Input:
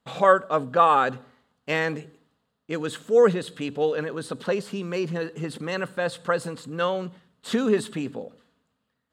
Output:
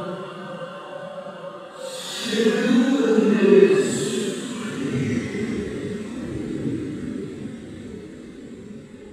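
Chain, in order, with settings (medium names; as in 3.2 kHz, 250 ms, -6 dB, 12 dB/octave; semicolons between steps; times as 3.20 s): tape stop on the ending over 1.37 s; two-slope reverb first 0.34 s, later 3.2 s, from -18 dB, DRR -9.5 dB; Paulstretch 5.5×, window 0.05 s, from 7.12 s; trim -5 dB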